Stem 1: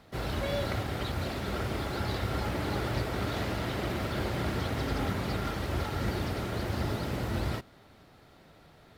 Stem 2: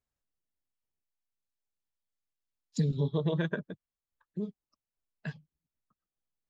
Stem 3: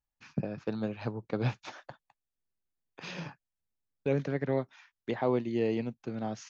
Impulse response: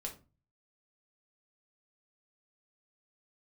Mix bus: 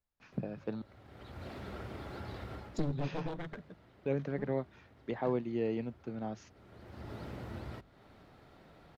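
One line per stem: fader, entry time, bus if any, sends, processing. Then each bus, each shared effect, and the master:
-1.0 dB, 0.20 s, no send, compression 2:1, threshold -47 dBFS, peak gain reduction 11.5 dB; auto duck -18 dB, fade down 0.45 s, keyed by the third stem
2.86 s -1.5 dB -> 3.56 s -9.5 dB, 0.00 s, no send, one-sided wavefolder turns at -31 dBFS
-4.0 dB, 0.00 s, muted 0.82–2.75 s, no send, none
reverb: none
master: treble shelf 3.8 kHz -9.5 dB; hum notches 50/100/150 Hz

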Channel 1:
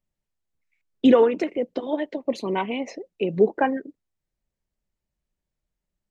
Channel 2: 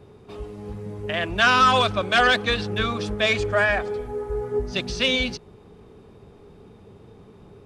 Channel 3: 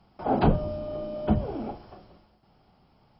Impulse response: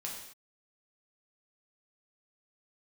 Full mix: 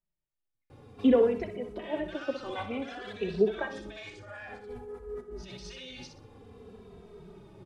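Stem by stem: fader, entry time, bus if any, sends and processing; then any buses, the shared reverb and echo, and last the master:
-6.0 dB, 0.00 s, no bus, no send, echo send -10.5 dB, low-pass 3.8 kHz
-2.5 dB, 0.70 s, bus A, no send, echo send -10.5 dB, peak limiter -17 dBFS, peak gain reduction 10 dB; flange 1.8 Hz, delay 2.1 ms, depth 9.7 ms, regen +65%
-9.5 dB, 1.95 s, bus A, no send, no echo send, none
bus A: 0.0 dB, compressor with a negative ratio -42 dBFS, ratio -1; peak limiter -33 dBFS, peak gain reduction 8 dB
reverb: none
echo: feedback delay 62 ms, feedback 30%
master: endless flanger 2.7 ms -0.55 Hz

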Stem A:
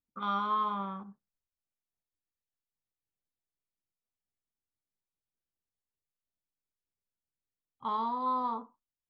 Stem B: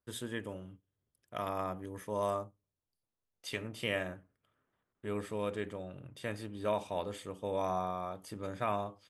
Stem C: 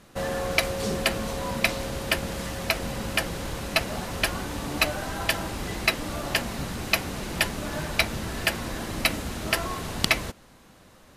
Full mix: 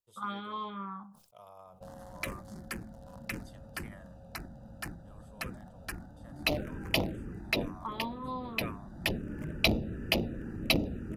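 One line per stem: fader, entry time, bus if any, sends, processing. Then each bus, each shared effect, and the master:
+0.5 dB, 0.00 s, no send, none
-14.0 dB, 0.00 s, no send, none
6.14 s -10 dB -> 6.67 s -0.5 dB, 1.65 s, no send, local Wiener filter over 41 samples; auto duck -8 dB, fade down 0.70 s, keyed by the first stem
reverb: none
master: touch-sensitive phaser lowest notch 270 Hz, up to 1.6 kHz, full sweep at -25 dBFS; bass shelf 120 Hz -8 dB; decay stretcher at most 85 dB/s

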